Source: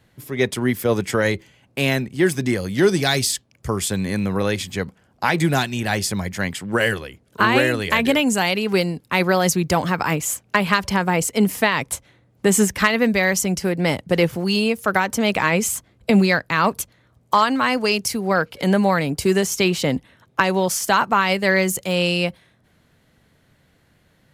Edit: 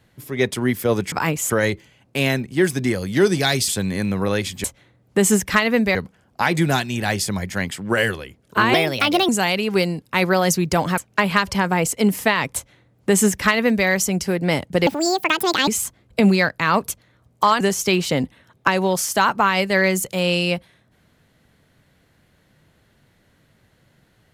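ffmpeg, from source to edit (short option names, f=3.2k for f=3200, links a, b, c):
-filter_complex "[0:a]asplit=12[a][b][c][d][e][f][g][h][i][j][k][l];[a]atrim=end=1.122[m];[b]atrim=start=9.958:end=10.342[n];[c]atrim=start=1.118:end=3.302[o];[d]atrim=start=3.818:end=4.782[p];[e]atrim=start=11.918:end=13.232[q];[f]atrim=start=4.778:end=7.574[r];[g]atrim=start=7.57:end=8.27,asetpts=PTS-STARTPTS,asetrate=56448,aresample=44100,atrim=end_sample=24117,asetpts=PTS-STARTPTS[s];[h]atrim=start=8.266:end=9.962[t];[i]atrim=start=10.338:end=14.234[u];[j]atrim=start=14.23:end=15.58,asetpts=PTS-STARTPTS,asetrate=73647,aresample=44100[v];[k]atrim=start=15.576:end=17.512[w];[l]atrim=start=19.328[x];[m][n]acrossfade=d=0.004:c1=hsin:c2=hsin[y];[y][o]acrossfade=d=0.004:c1=hsin:c2=hsin[z];[z][p]acrossfade=d=0.004:c1=hsin:c2=hsin[aa];[aa][q]acrossfade=d=0.004:c1=hsin:c2=hsin[ab];[ab][r]acrossfade=d=0.004:c1=hsin:c2=hsin[ac];[ac][s]acrossfade=d=0.004:c1=hsin:c2=hsin[ad];[ad][t]acrossfade=d=0.004:c1=hsin:c2=hsin[ae];[ae][u]acrossfade=d=0.004:c1=hsin:c2=hsin[af];[af][v]acrossfade=d=0.004:c1=hsin:c2=hsin[ag];[ag][w]acrossfade=d=0.004:c1=hsin:c2=hsin[ah];[ah][x]acrossfade=d=0.004:c1=hsin:c2=hsin"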